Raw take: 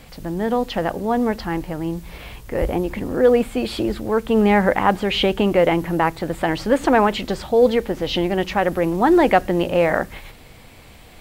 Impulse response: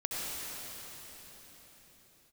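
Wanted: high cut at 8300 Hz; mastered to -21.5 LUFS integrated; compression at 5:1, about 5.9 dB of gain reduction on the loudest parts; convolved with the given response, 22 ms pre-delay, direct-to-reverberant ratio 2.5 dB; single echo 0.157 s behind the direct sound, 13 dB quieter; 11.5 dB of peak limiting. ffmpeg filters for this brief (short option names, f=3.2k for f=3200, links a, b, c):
-filter_complex "[0:a]lowpass=8.3k,acompressor=threshold=-17dB:ratio=5,alimiter=limit=-17.5dB:level=0:latency=1,aecho=1:1:157:0.224,asplit=2[a][b];[1:a]atrim=start_sample=2205,adelay=22[c];[b][c]afir=irnorm=-1:irlink=0,volume=-8.5dB[d];[a][d]amix=inputs=2:normalize=0,volume=3.5dB"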